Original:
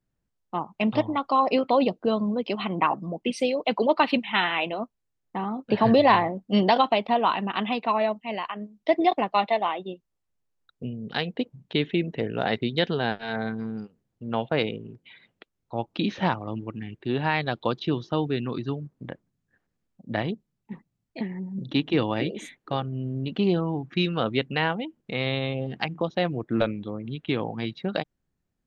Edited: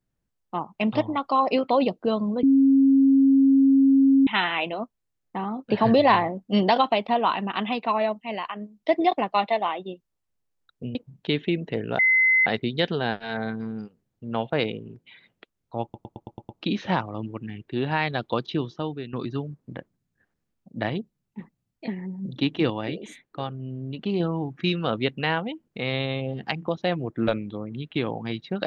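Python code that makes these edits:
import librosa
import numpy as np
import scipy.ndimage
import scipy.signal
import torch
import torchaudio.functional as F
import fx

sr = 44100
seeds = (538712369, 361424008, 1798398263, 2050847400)

y = fx.edit(x, sr, fx.bleep(start_s=2.43, length_s=1.84, hz=271.0, db=-13.5),
    fx.cut(start_s=10.95, length_s=0.46),
    fx.insert_tone(at_s=12.45, length_s=0.47, hz=2050.0, db=-15.5),
    fx.stutter(start_s=15.82, slice_s=0.11, count=7),
    fx.fade_out_to(start_s=17.83, length_s=0.63, floor_db=-11.0),
    fx.clip_gain(start_s=22.03, length_s=1.5, db=-3.5), tone=tone)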